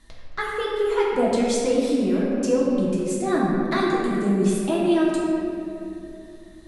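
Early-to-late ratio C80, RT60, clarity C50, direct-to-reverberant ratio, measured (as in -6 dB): 0.0 dB, 2.9 s, -1.5 dB, -6.5 dB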